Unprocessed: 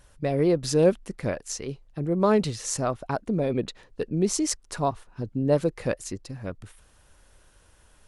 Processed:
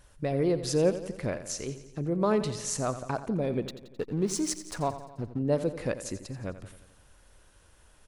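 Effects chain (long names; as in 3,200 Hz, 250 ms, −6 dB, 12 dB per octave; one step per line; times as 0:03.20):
in parallel at −2.5 dB: downward compressor, threshold −29 dBFS, peak gain reduction 14 dB
0:03.68–0:05.39: on the sum: slack as between gear wheels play −32 dBFS
repeating echo 87 ms, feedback 59%, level −13 dB
level −6.5 dB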